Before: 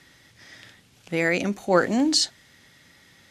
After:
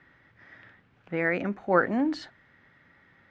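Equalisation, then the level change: resonant low-pass 1.6 kHz, resonance Q 1.6; -4.5 dB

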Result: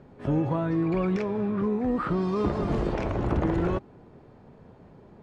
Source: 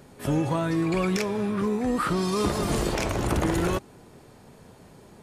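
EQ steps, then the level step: low-pass 1.1 kHz 6 dB/octave; distance through air 85 m; 0.0 dB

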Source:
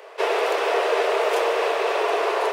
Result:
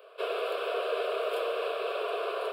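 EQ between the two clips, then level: static phaser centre 1.3 kHz, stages 8; -8.0 dB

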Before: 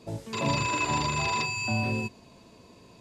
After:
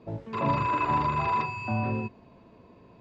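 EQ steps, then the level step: low-pass 1.9 kHz 12 dB/octave; dynamic bell 1.2 kHz, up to +7 dB, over -46 dBFS, Q 2; 0.0 dB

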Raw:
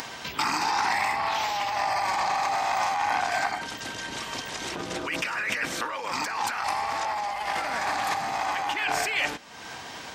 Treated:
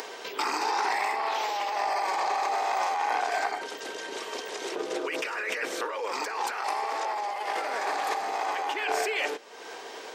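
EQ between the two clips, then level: resonant high-pass 420 Hz, resonance Q 4.9; -4.0 dB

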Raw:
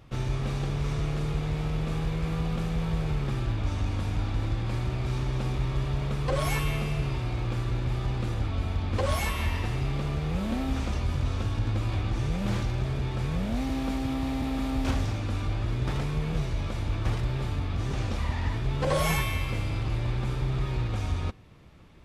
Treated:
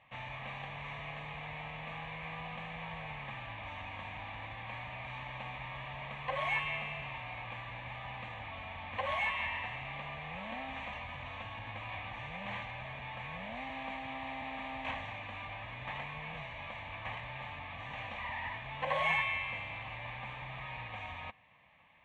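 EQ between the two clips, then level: band-pass filter 1.7 kHz, Q 1.1; distance through air 110 m; static phaser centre 1.4 kHz, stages 6; +5.0 dB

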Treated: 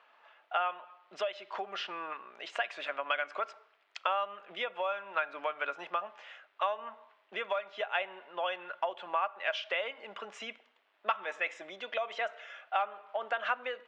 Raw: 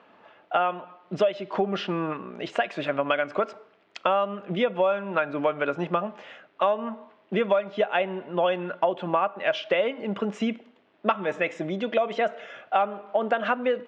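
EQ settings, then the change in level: high-pass 920 Hz 12 dB/octave; -4.0 dB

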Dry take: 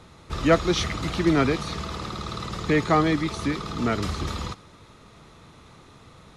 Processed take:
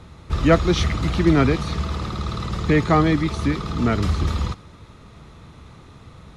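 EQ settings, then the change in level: tone controls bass +5 dB, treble -3 dB; peaking EQ 66 Hz +5 dB 0.72 oct; +2.0 dB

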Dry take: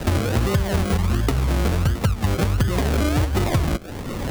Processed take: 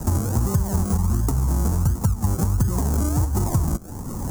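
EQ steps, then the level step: FFT filter 200 Hz 0 dB, 580 Hz -10 dB, 900 Hz 0 dB, 2.3 kHz -21 dB, 3.6 kHz -20 dB, 6.6 kHz +4 dB; 0.0 dB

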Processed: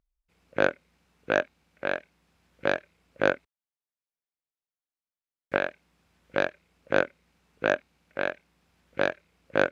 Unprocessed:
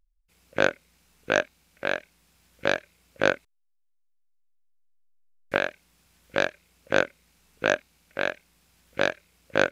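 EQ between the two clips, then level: high-pass 79 Hz 6 dB/octave; low-pass 1.8 kHz 6 dB/octave; 0.0 dB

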